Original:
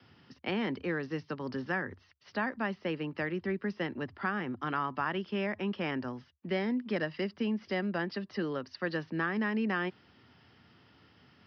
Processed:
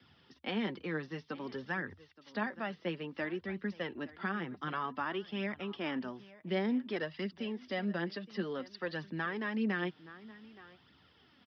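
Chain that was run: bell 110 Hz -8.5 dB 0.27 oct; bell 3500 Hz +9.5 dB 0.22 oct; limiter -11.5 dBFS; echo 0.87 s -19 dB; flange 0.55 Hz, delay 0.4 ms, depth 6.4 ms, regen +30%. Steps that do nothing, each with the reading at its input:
limiter -11.5 dBFS: input peak -18.5 dBFS

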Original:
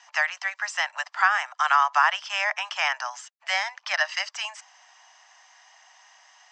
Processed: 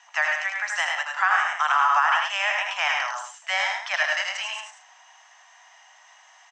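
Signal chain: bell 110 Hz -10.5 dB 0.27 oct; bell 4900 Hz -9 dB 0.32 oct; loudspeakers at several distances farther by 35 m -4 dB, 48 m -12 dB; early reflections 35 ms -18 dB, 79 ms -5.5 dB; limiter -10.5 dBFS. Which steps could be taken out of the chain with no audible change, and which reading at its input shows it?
bell 110 Hz: input band starts at 510 Hz

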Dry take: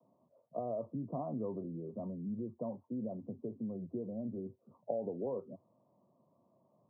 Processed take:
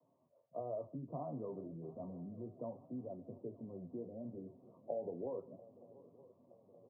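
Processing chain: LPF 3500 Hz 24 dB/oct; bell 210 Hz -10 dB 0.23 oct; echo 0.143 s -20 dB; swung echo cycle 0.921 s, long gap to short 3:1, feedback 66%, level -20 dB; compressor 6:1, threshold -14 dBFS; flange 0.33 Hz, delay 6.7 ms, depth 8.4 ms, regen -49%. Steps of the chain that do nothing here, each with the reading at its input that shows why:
LPF 3500 Hz: input band ends at 960 Hz; compressor, threshold -14 dBFS: input peak -21.5 dBFS

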